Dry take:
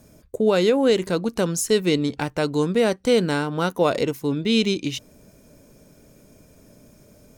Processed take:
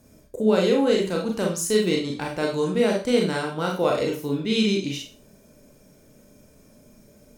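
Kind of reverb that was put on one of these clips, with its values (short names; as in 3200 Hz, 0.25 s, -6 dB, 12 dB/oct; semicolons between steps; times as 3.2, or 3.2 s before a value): Schroeder reverb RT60 0.34 s, combs from 29 ms, DRR -0.5 dB; gain -5 dB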